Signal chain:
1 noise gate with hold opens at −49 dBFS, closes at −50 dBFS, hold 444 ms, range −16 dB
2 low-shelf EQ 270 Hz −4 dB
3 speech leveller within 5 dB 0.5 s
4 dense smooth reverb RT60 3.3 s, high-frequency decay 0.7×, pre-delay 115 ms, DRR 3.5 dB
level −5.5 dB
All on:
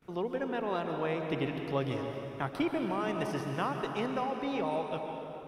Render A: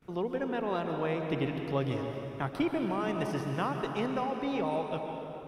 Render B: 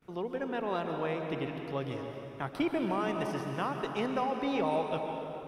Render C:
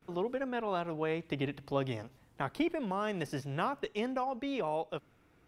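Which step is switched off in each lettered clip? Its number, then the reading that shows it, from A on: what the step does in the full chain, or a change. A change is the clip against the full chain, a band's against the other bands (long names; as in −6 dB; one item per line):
2, 125 Hz band +2.5 dB
3, change in crest factor −2.0 dB
4, change in integrated loudness −1.5 LU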